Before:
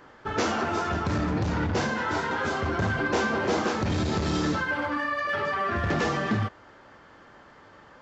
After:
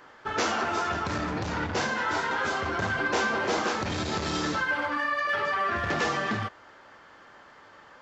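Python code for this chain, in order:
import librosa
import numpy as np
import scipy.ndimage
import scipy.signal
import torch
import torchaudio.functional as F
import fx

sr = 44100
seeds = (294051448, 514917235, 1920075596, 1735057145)

y = fx.low_shelf(x, sr, hz=420.0, db=-10.0)
y = y * librosa.db_to_amplitude(2.0)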